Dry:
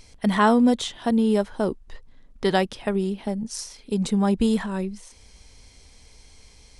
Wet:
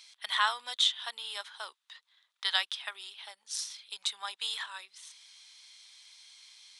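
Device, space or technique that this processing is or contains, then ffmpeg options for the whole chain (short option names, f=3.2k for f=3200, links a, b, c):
headphones lying on a table: -af "highpass=f=1.1k:w=0.5412,highpass=f=1.1k:w=1.3066,equalizer=f=3.6k:t=o:w=0.52:g=12,volume=-4dB"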